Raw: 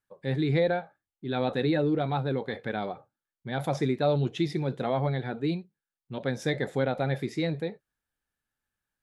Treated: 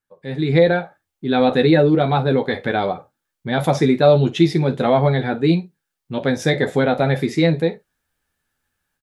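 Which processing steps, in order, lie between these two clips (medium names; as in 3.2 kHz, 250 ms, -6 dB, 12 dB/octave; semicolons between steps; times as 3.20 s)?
level rider gain up to 11.5 dB; on a send: early reflections 12 ms -7 dB, 51 ms -17 dB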